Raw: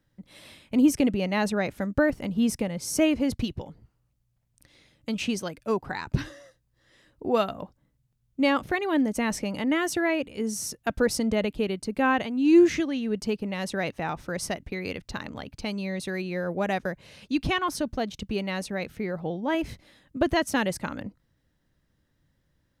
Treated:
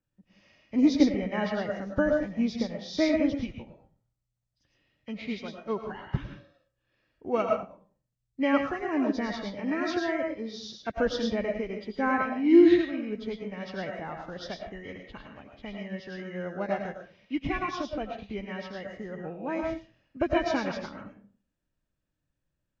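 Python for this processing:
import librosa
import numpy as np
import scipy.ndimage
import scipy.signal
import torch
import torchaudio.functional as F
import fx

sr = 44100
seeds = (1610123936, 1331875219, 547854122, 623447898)

y = fx.freq_compress(x, sr, knee_hz=1500.0, ratio=1.5)
y = fx.rev_freeverb(y, sr, rt60_s=0.43, hf_ratio=0.6, predelay_ms=65, drr_db=1.5)
y = fx.upward_expand(y, sr, threshold_db=-40.0, expansion=1.5)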